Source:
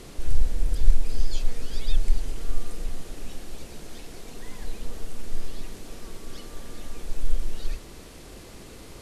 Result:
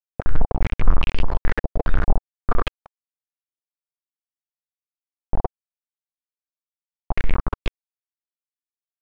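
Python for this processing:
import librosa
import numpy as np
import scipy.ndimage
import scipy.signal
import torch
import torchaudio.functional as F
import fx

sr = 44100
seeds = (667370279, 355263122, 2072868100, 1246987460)

y = np.where(np.abs(x) >= 10.0 ** (-16.5 / 20.0), x, 0.0)
y = fx.filter_held_lowpass(y, sr, hz=4.9, low_hz=660.0, high_hz=2700.0)
y = y * 10.0 ** (1.0 / 20.0)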